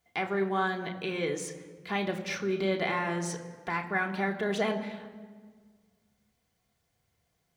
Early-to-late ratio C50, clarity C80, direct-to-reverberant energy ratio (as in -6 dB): 10.5 dB, 12.0 dB, 1.5 dB